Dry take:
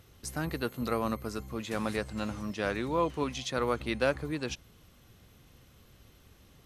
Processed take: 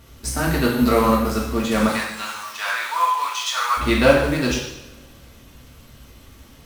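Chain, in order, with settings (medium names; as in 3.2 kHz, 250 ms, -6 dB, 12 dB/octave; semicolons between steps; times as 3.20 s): crackle 350 per s -54 dBFS; in parallel at -9.5 dB: bit crusher 6-bit; 1.88–3.77 s: on the sum: Chebyshev high-pass 1 kHz, order 3; two-slope reverb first 0.82 s, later 2.4 s, from -23 dB, DRR -5 dB; trim +5.5 dB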